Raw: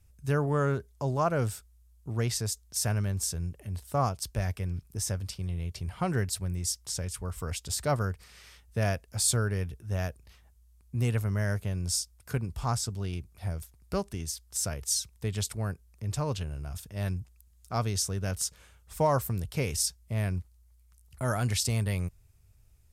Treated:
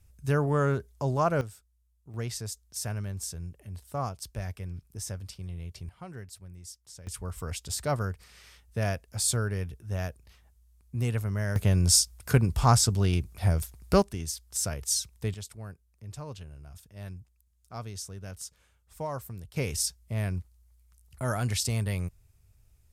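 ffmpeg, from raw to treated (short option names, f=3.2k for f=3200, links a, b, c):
-af "asetnsamples=n=441:p=0,asendcmd='1.41 volume volume -11dB;2.14 volume volume -5dB;5.89 volume volume -14dB;7.07 volume volume -1dB;11.56 volume volume 9dB;14.02 volume volume 1dB;15.34 volume volume -9.5dB;19.56 volume volume -0.5dB',volume=1.5dB"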